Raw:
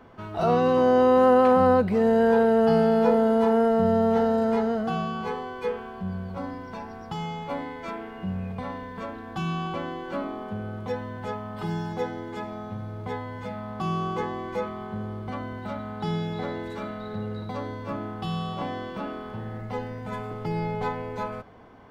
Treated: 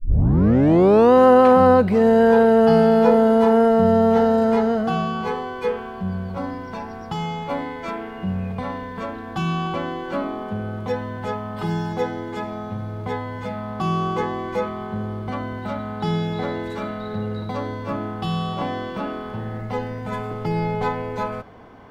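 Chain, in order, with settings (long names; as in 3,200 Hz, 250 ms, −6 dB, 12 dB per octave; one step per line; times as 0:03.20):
turntable start at the beginning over 1.13 s
level +5.5 dB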